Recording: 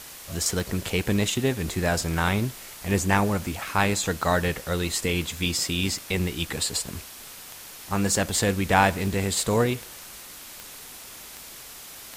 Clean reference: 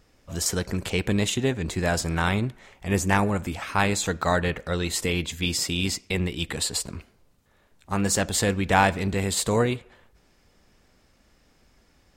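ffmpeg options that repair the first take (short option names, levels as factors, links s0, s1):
-af "adeclick=t=4,afwtdn=0.0089"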